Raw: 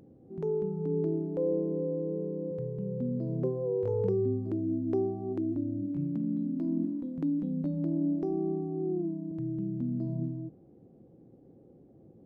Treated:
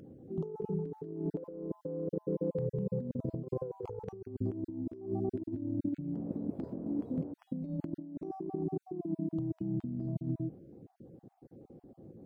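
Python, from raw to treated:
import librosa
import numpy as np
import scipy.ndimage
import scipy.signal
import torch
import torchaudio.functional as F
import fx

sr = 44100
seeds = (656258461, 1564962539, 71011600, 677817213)

y = fx.spec_dropout(x, sr, seeds[0], share_pct=28)
y = fx.over_compress(y, sr, threshold_db=-35.0, ratio=-0.5)
y = fx.dmg_noise_band(y, sr, seeds[1], low_hz=82.0, high_hz=540.0, level_db=-46.0, at=(6.13, 7.32), fade=0.02)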